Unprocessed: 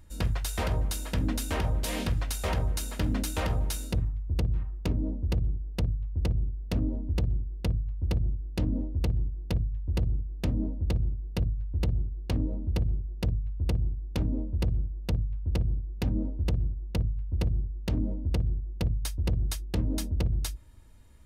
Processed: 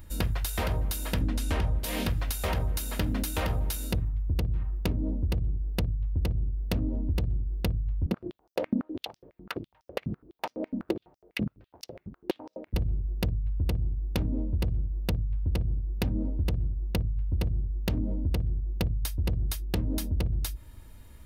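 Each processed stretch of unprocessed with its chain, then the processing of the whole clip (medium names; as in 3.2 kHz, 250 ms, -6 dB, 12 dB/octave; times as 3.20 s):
1.21–1.79 s: low-pass 9.9 kHz + bass shelf 150 Hz +6.5 dB
8.06–12.74 s: treble shelf 2.6 kHz -9.5 dB + step-sequenced high-pass 12 Hz 210–5500 Hz
whole clip: treble shelf 3.9 kHz +12 dB; compression, threshold -30 dBFS; peaking EQ 7.5 kHz -11.5 dB 1.6 oct; trim +6 dB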